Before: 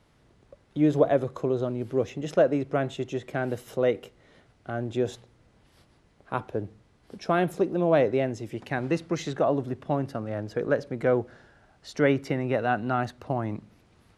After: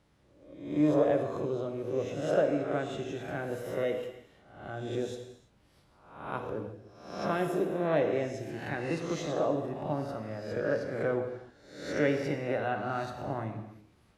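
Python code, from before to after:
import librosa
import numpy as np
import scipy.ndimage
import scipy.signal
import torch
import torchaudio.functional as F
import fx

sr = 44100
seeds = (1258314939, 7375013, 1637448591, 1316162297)

y = fx.spec_swells(x, sr, rise_s=0.72)
y = fx.rev_gated(y, sr, seeds[0], gate_ms=370, shape='falling', drr_db=4.5)
y = y * 10.0 ** (-8.5 / 20.0)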